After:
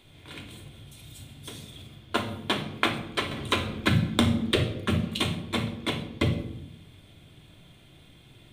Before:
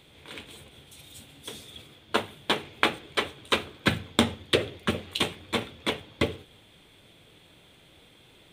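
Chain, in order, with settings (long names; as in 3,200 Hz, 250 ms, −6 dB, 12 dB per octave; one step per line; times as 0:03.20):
on a send at −5 dB: bass and treble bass +11 dB, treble +4 dB + convolution reverb RT60 0.75 s, pre-delay 3 ms
0:03.31–0:04.56: on the sum: multiband upward and downward compressor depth 40%
level −2.5 dB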